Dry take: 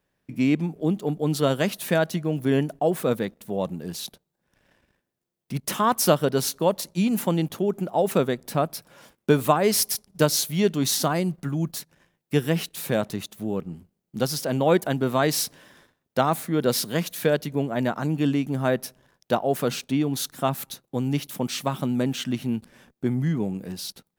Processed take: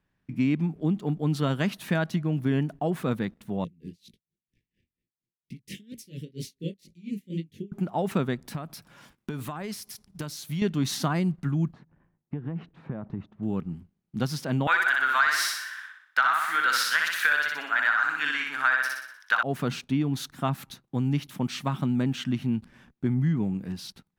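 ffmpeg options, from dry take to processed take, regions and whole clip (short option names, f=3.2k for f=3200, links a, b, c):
-filter_complex "[0:a]asettb=1/sr,asplit=3[a][b][c];[a]atrim=end=3.644[d];[b]atrim=start=3.64:end=7.72,asetpts=PTS-STARTPTS,afade=t=in:d=0.004:c=qsin,afade=t=out:st=4.076:d=0.004:c=qsin,asuperstop=centerf=990:order=12:qfactor=0.69,flanger=delay=17.5:depth=8:speed=2.1,aeval=exprs='val(0)*pow(10,-27*(0.5-0.5*cos(2*PI*4.3*n/s))/20)':c=same[e];[c]atrim=start=7.716[f];[d][e]acrossfade=d=0.004:c1=hsin:c2=qsin[g];[g][f]acrossfade=d=0.004:c1=qsin:c2=hsin,asettb=1/sr,asplit=3[h][i][j];[h]atrim=end=8.424[k];[i]atrim=start=8.42:end=10.62,asetpts=PTS-STARTPTS,afade=t=in:d=0.004:c=qsin,afade=t=out:st=2.196:d=0.004:c=qsin,highshelf=f=4.5k:g=6.5,acompressor=threshold=-28dB:ratio=6:attack=3.2:release=140:knee=1:detection=peak[l];[j]atrim=start=10.616[m];[k][l]acrossfade=d=0.004:c1=hsin:c2=qsin[n];[n][m]acrossfade=d=0.004:c1=qsin:c2=hsin,asettb=1/sr,asplit=3[o][p][q];[o]atrim=end=11.734[r];[p]atrim=start=11.73:end=13.43,asetpts=PTS-STARTPTS,afade=t=in:d=0.004:c=qsin,afade=t=out:st=1.696:d=0.004:c=qsin,lowpass=1k,acompressor=threshold=-27dB:ratio=12:attack=3.2:release=140:knee=1:detection=peak[s];[q]atrim=start=13.426[t];[r][s]acrossfade=d=0.004:c1=hsin:c2=qsin[u];[u][t]acrossfade=d=0.004:c1=qsin:c2=hsin,asettb=1/sr,asplit=3[v][w][x];[v]atrim=end=14.674[y];[w]atrim=start=14.67:end=19.43,asetpts=PTS-STARTPTS,afade=t=in:d=0.004:c=qsin,afade=t=out:st=4.756:d=0.004:c=qsin,highpass=f=1.5k:t=q:w=4.4,aecho=1:1:61|122|183|244|305|366|427:0.708|0.361|0.184|0.0939|0.0479|0.0244|0.0125,atrim=end_sample=209916,acontrast=63[z];[x]atrim=start=19.426[aa];[y][z]acrossfade=d=0.004:c1=hsin:c2=qsin[ab];[ab][aa]acrossfade=d=0.004:c1=qsin:c2=hsin,lowpass=f=1.7k:p=1,equalizer=f=520:t=o:w=1.3:g=-11.5,acompressor=threshold=-23dB:ratio=4,volume=3dB"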